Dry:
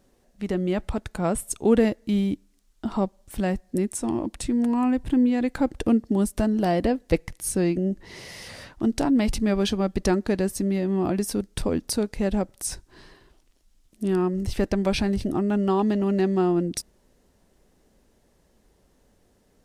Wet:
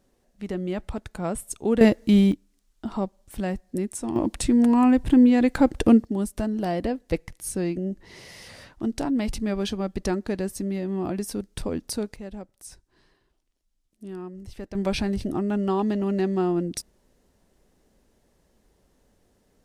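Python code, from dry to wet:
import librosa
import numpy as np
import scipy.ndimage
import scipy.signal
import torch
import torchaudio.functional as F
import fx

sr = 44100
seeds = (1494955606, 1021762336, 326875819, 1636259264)

y = fx.gain(x, sr, db=fx.steps((0.0, -4.0), (1.81, 6.0), (2.32, -3.0), (4.16, 4.5), (6.05, -4.0), (12.16, -13.5), (14.75, -2.0)))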